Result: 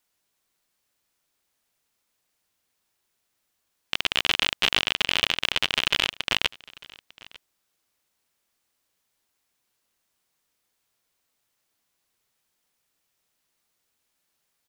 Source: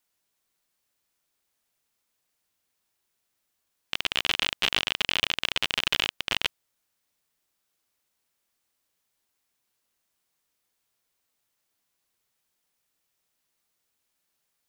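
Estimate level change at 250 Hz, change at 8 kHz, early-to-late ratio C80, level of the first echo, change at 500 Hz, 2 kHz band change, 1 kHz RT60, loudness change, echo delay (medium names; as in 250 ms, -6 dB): +3.0 dB, +2.0 dB, no reverb, -23.0 dB, +3.0 dB, +3.0 dB, no reverb, +3.0 dB, 899 ms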